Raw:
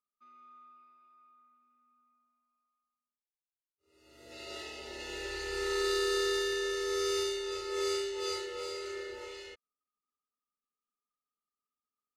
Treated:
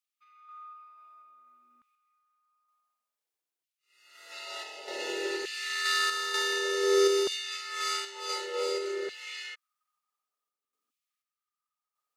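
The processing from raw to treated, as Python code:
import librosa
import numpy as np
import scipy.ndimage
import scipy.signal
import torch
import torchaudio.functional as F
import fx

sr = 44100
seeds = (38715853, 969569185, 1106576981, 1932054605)

y = fx.tremolo_random(x, sr, seeds[0], hz=4.1, depth_pct=55)
y = fx.filter_lfo_highpass(y, sr, shape='saw_down', hz=0.55, low_hz=270.0, high_hz=2800.0, q=1.6)
y = y * 10.0 ** (7.0 / 20.0)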